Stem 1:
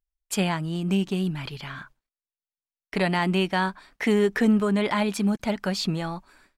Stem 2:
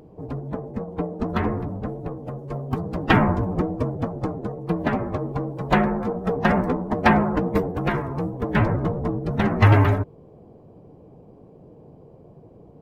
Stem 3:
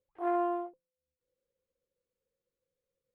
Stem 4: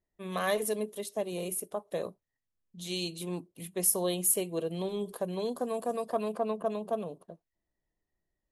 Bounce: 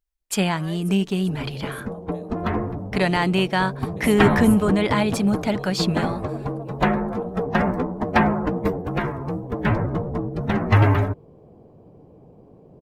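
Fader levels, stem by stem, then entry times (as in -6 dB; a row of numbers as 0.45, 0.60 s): +3.0, -1.0, -5.0, -10.5 dB; 0.00, 1.10, 2.10, 0.20 s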